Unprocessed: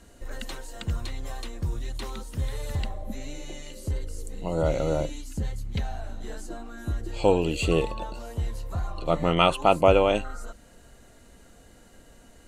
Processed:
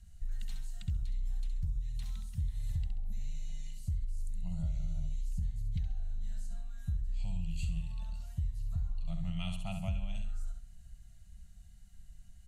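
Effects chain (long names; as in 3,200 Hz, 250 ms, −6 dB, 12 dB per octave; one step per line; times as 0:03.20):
dynamic equaliser 1,300 Hz, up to −6 dB, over −36 dBFS, Q 0.85
elliptic band-stop filter 190–690 Hz, stop band 50 dB
guitar amp tone stack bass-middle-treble 10-0-1
repeating echo 67 ms, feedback 33%, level −7 dB
downward compressor, threshold −39 dBFS, peak gain reduction 9 dB
level +8.5 dB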